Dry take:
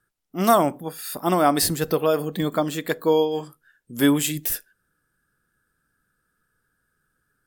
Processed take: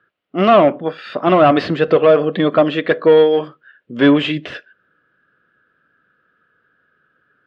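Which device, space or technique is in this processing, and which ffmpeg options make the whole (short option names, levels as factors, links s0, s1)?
overdrive pedal into a guitar cabinet: -filter_complex "[0:a]asplit=2[s0][s1];[s1]highpass=f=720:p=1,volume=8.91,asoftclip=type=tanh:threshold=0.668[s2];[s0][s2]amix=inputs=2:normalize=0,lowpass=f=1200:p=1,volume=0.501,highpass=79,equalizer=f=580:t=q:w=4:g=4,equalizer=f=870:t=q:w=4:g=-9,equalizer=f=2900:t=q:w=4:g=5,lowpass=f=3700:w=0.5412,lowpass=f=3700:w=1.3066,volume=1.58"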